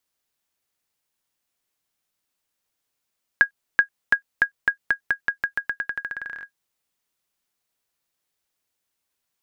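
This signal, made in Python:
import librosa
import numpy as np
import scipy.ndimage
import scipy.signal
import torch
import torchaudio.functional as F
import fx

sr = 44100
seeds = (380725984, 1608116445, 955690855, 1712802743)

y = fx.bouncing_ball(sr, first_gap_s=0.38, ratio=0.88, hz=1640.0, decay_ms=98.0, level_db=-4.0)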